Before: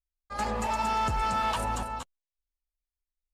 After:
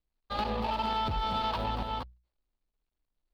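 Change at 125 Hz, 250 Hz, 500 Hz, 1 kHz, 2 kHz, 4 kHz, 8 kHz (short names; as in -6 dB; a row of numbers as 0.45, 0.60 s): -1.0 dB, 0.0 dB, -0.5 dB, -3.0 dB, -6.0 dB, +3.0 dB, under -15 dB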